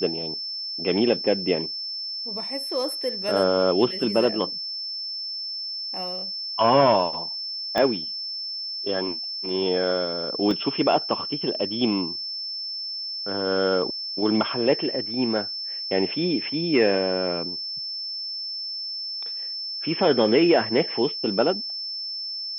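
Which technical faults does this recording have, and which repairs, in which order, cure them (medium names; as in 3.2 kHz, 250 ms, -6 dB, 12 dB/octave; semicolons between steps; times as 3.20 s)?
whine 5.3 kHz -29 dBFS
7.78 s: pop -11 dBFS
10.51 s: dropout 2.3 ms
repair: de-click; band-stop 5.3 kHz, Q 30; interpolate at 10.51 s, 2.3 ms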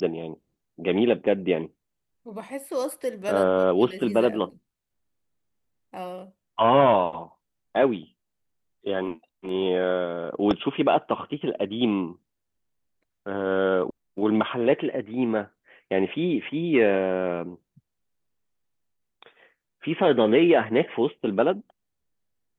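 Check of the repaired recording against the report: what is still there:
7.78 s: pop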